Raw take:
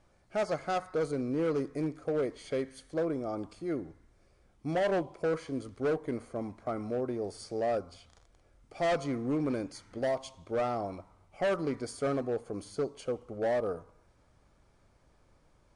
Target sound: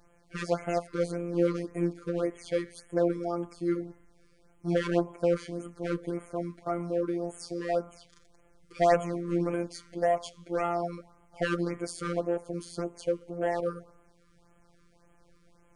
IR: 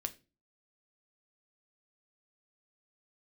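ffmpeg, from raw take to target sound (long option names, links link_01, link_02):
-af "afftfilt=real='hypot(re,im)*cos(PI*b)':imag='0':win_size=1024:overlap=0.75,afftfilt=real='re*(1-between(b*sr/1024,680*pow(4800/680,0.5+0.5*sin(2*PI*1.8*pts/sr))/1.41,680*pow(4800/680,0.5+0.5*sin(2*PI*1.8*pts/sr))*1.41))':imag='im*(1-between(b*sr/1024,680*pow(4800/680,0.5+0.5*sin(2*PI*1.8*pts/sr))/1.41,680*pow(4800/680,0.5+0.5*sin(2*PI*1.8*pts/sr))*1.41))':win_size=1024:overlap=0.75,volume=7dB"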